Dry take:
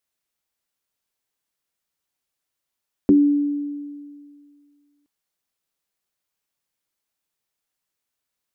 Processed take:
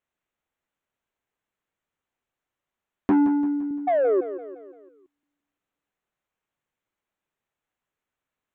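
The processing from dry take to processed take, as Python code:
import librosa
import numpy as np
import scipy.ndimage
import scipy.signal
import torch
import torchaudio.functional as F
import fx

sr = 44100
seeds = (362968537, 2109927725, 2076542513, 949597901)

y = fx.wiener(x, sr, points=9)
y = fx.highpass(y, sr, hz=130.0, slope=12, at=(3.11, 3.71))
y = fx.spec_paint(y, sr, seeds[0], shape='fall', start_s=3.87, length_s=0.34, low_hz=350.0, high_hz=760.0, level_db=-21.0)
y = 10.0 ** (-19.0 / 20.0) * np.tanh(y / 10.0 ** (-19.0 / 20.0))
y = fx.echo_feedback(y, sr, ms=171, feedback_pct=49, wet_db=-12.0)
y = F.gain(torch.from_numpy(y), 3.0).numpy()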